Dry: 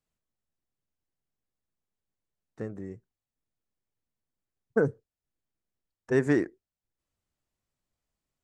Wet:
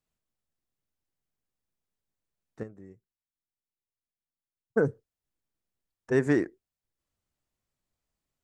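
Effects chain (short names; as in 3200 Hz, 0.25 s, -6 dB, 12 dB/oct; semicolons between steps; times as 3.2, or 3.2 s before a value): 2.63–4.79 upward expander 1.5:1, over -45 dBFS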